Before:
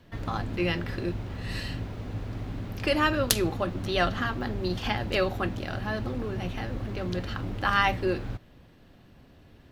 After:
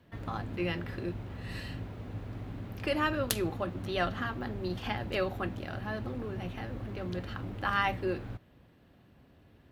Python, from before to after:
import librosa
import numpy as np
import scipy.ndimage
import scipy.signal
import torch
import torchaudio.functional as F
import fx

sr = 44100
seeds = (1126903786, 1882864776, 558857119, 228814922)

y = scipy.signal.sosfilt(scipy.signal.butter(2, 48.0, 'highpass', fs=sr, output='sos'), x)
y = fx.peak_eq(y, sr, hz=5500.0, db=-5.5, octaves=1.3)
y = y * 10.0 ** (-5.0 / 20.0)